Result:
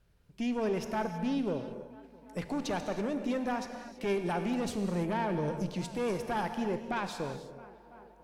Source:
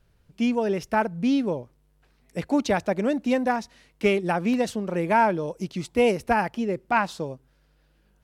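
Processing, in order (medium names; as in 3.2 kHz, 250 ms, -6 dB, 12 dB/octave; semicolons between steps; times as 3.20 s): 4.62–5.72 s: bass shelf 230 Hz +9.5 dB; on a send: tape echo 332 ms, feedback 86%, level -24 dB, low-pass 2.6 kHz; on the sum: valve stage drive 17 dB, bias 0.55; peak limiter -24 dBFS, peak gain reduction 8.5 dB; gated-style reverb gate 350 ms flat, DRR 7 dB; trim -2 dB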